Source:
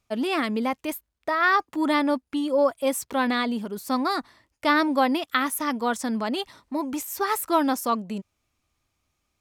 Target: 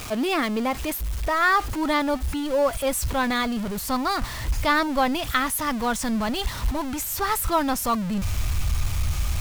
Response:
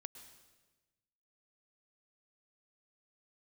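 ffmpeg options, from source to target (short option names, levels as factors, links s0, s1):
-af "aeval=exprs='val(0)+0.5*0.0355*sgn(val(0))':c=same,asubboost=boost=10.5:cutoff=96"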